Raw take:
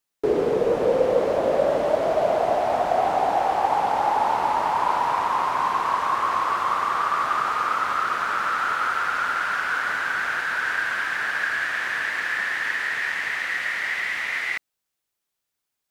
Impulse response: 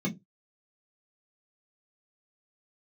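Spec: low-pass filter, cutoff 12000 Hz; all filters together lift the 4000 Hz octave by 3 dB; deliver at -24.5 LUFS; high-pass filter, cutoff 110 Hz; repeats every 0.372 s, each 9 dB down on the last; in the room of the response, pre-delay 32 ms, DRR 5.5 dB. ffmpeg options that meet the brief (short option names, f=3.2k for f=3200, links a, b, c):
-filter_complex "[0:a]highpass=110,lowpass=12k,equalizer=f=4k:t=o:g=4,aecho=1:1:372|744|1116|1488:0.355|0.124|0.0435|0.0152,asplit=2[a][b];[1:a]atrim=start_sample=2205,adelay=32[c];[b][c]afir=irnorm=-1:irlink=0,volume=-10.5dB[d];[a][d]amix=inputs=2:normalize=0,volume=-4dB"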